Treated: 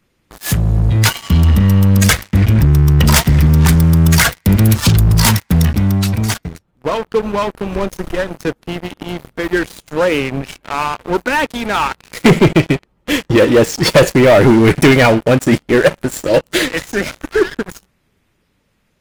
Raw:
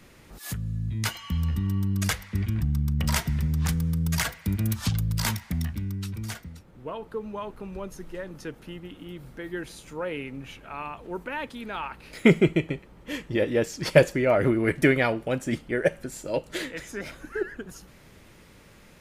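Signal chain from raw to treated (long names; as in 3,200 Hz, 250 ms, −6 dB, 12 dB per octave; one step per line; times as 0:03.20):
spectral magnitudes quantised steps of 15 dB
leveller curve on the samples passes 5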